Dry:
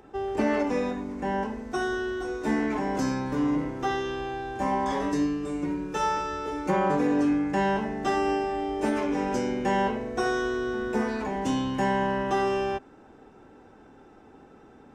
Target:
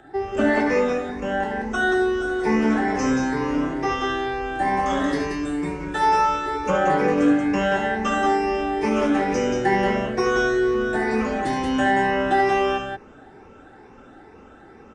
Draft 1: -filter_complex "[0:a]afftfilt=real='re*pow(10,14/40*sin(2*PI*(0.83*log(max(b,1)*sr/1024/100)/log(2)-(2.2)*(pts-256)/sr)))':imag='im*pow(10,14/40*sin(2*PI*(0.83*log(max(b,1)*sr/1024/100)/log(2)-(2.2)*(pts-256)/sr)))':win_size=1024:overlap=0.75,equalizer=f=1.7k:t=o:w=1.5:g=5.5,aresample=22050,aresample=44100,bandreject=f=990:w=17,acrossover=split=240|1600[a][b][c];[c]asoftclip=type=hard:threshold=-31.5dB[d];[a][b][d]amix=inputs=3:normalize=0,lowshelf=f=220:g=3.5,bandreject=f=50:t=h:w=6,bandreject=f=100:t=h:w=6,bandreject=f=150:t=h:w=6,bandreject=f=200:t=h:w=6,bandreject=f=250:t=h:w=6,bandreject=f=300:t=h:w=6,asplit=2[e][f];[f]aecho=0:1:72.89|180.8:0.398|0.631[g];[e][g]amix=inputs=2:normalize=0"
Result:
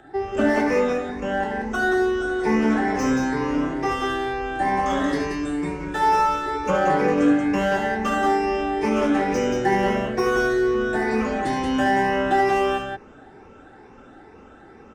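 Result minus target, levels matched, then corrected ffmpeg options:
hard clip: distortion +29 dB
-filter_complex "[0:a]afftfilt=real='re*pow(10,14/40*sin(2*PI*(0.83*log(max(b,1)*sr/1024/100)/log(2)-(2.2)*(pts-256)/sr)))':imag='im*pow(10,14/40*sin(2*PI*(0.83*log(max(b,1)*sr/1024/100)/log(2)-(2.2)*(pts-256)/sr)))':win_size=1024:overlap=0.75,equalizer=f=1.7k:t=o:w=1.5:g=5.5,aresample=22050,aresample=44100,bandreject=f=990:w=17,acrossover=split=240|1600[a][b][c];[c]asoftclip=type=hard:threshold=-23dB[d];[a][b][d]amix=inputs=3:normalize=0,lowshelf=f=220:g=3.5,bandreject=f=50:t=h:w=6,bandreject=f=100:t=h:w=6,bandreject=f=150:t=h:w=6,bandreject=f=200:t=h:w=6,bandreject=f=250:t=h:w=6,bandreject=f=300:t=h:w=6,asplit=2[e][f];[f]aecho=0:1:72.89|180.8:0.398|0.631[g];[e][g]amix=inputs=2:normalize=0"

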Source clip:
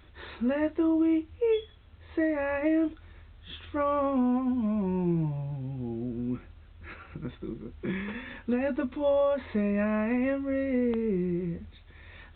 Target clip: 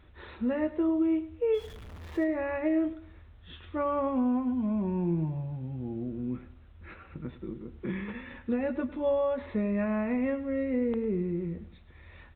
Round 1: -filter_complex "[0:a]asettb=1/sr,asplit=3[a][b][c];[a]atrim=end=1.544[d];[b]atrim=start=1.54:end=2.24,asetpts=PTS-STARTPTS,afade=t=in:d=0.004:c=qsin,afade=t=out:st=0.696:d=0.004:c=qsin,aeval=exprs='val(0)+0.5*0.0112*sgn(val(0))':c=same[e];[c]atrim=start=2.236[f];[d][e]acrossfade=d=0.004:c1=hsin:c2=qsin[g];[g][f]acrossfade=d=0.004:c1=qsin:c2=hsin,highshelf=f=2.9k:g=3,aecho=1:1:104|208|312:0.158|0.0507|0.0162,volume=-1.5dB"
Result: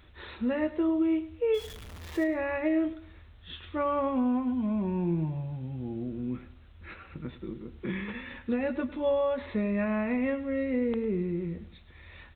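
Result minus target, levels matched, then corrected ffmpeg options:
8000 Hz band +9.5 dB
-filter_complex "[0:a]asettb=1/sr,asplit=3[a][b][c];[a]atrim=end=1.544[d];[b]atrim=start=1.54:end=2.24,asetpts=PTS-STARTPTS,afade=t=in:d=0.004:c=qsin,afade=t=out:st=0.696:d=0.004:c=qsin,aeval=exprs='val(0)+0.5*0.0112*sgn(val(0))':c=same[e];[c]atrim=start=2.236[f];[d][e]acrossfade=d=0.004:c1=hsin:c2=qsin[g];[g][f]acrossfade=d=0.004:c1=qsin:c2=hsin,highshelf=f=2.9k:g=-8.5,aecho=1:1:104|208|312:0.158|0.0507|0.0162,volume=-1.5dB"

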